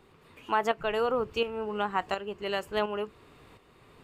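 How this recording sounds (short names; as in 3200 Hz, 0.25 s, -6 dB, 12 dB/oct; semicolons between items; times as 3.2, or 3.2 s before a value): tremolo saw up 1.4 Hz, depth 60%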